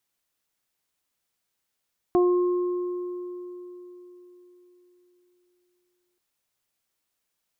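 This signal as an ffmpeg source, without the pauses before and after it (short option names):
-f lavfi -i "aevalsrc='0.158*pow(10,-3*t/4.04)*sin(2*PI*357*t)+0.0631*pow(10,-3*t/0.41)*sin(2*PI*714*t)+0.0335*pow(10,-3*t/2.91)*sin(2*PI*1071*t)':d=4.03:s=44100"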